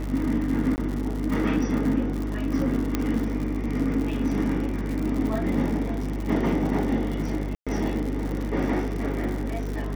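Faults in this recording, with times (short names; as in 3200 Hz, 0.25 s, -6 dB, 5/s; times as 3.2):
buzz 50 Hz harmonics 28 -30 dBFS
crackle 120/s -30 dBFS
0.76–0.78 gap 19 ms
2.95 pop -10 dBFS
7.55–7.67 gap 0.116 s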